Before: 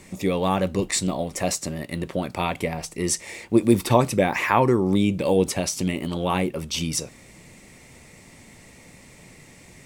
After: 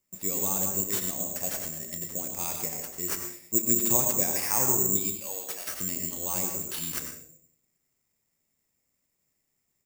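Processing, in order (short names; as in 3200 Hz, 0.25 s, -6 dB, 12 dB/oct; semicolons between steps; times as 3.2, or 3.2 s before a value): 4.97–5.74 HPF 810 Hz 12 dB/oct; gate -35 dBFS, range -23 dB; doubler 31 ms -12.5 dB; reverb RT60 0.65 s, pre-delay 84 ms, DRR 3.5 dB; careless resampling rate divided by 6×, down none, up zero stuff; gain -15.5 dB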